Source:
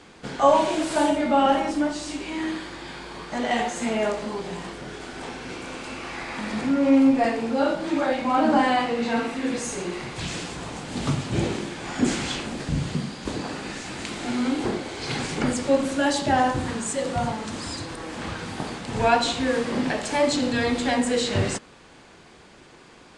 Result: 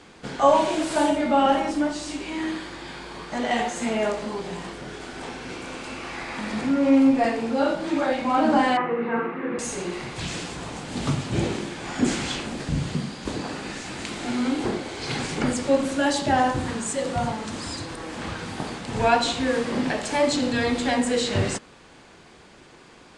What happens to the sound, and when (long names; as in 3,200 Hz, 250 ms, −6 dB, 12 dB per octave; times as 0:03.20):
0:08.77–0:09.59: loudspeaker in its box 160–2,100 Hz, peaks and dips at 170 Hz +8 dB, 260 Hz −7 dB, 370 Hz +10 dB, 670 Hz −6 dB, 1,200 Hz +6 dB